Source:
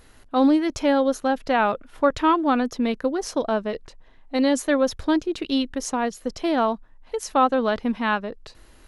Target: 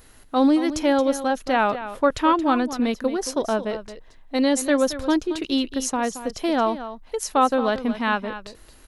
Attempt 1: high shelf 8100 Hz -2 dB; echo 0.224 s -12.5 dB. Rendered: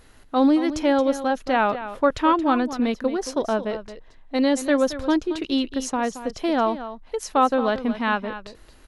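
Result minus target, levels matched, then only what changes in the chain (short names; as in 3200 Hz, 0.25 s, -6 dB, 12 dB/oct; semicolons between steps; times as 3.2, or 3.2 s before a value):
8000 Hz band -5.0 dB
change: high shelf 8100 Hz +10 dB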